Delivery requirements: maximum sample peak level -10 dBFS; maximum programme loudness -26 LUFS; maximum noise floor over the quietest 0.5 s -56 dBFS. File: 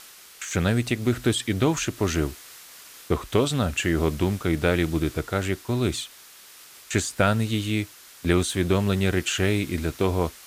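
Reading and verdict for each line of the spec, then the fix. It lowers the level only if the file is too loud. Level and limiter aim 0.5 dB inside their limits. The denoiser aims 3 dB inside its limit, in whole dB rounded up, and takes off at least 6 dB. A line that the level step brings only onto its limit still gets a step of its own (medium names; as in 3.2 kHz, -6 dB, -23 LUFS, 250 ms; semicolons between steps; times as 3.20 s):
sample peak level -7.5 dBFS: fail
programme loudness -25.0 LUFS: fail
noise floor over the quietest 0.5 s -48 dBFS: fail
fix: noise reduction 10 dB, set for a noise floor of -48 dBFS; trim -1.5 dB; peak limiter -10.5 dBFS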